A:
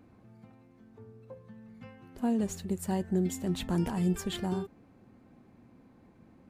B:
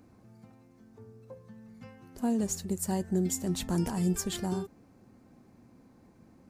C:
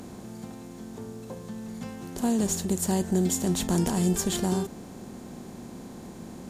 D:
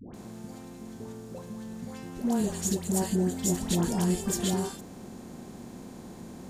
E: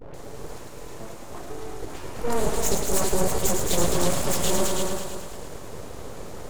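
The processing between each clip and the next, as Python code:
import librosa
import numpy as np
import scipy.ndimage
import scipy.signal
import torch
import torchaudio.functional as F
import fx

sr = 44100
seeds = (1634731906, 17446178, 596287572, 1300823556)

y1 = fx.high_shelf_res(x, sr, hz=4200.0, db=6.5, q=1.5)
y2 = fx.bin_compress(y1, sr, power=0.6)
y2 = y2 * 10.0 ** (2.5 / 20.0)
y3 = fx.dispersion(y2, sr, late='highs', ms=143.0, hz=840.0)
y3 = y3 * 10.0 ** (-2.0 / 20.0)
y4 = fx.echo_heads(y3, sr, ms=108, heads='all three', feedback_pct=45, wet_db=-7.5)
y4 = np.abs(y4)
y4 = y4 * 10.0 ** (6.0 / 20.0)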